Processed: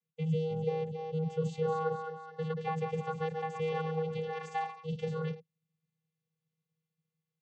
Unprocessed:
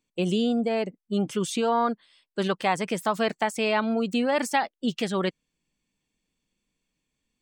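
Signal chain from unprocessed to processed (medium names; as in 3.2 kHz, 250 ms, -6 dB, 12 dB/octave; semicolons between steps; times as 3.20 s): ever faster or slower copies 315 ms, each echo +1 st, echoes 3, each echo -6 dB; vocoder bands 16, square 159 Hz; trim -8.5 dB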